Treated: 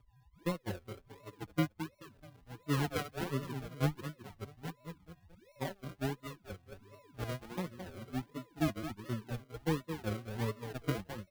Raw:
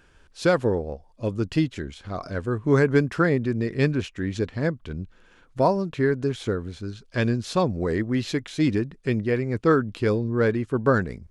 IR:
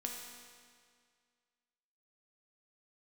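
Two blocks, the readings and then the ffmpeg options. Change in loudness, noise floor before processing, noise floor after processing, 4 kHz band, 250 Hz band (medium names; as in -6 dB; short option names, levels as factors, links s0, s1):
-14.5 dB, -56 dBFS, -67 dBFS, -9.5 dB, -14.5 dB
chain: -filter_complex "[0:a]aeval=exprs='val(0)+0.0501*sin(2*PI*1000*n/s)':c=same,acrossover=split=260|3000[s0][s1][s2];[s1]acompressor=threshold=0.0891:ratio=4[s3];[s0][s3][s2]amix=inputs=3:normalize=0,agate=range=0.02:threshold=0.112:ratio=16:detection=peak,aecho=1:1:215|430|645:0.316|0.0949|0.0285,acompressor=threshold=0.002:ratio=1.5,lowshelf=f=440:g=9.5,acrusher=samples=39:mix=1:aa=0.000001:lfo=1:lforange=23.4:lforate=1.4,equalizer=f=7400:t=o:w=1.3:g=-4.5,asplit=2[s4][s5];[s5]adelay=4.6,afreqshift=0.85[s6];[s4][s6]amix=inputs=2:normalize=1"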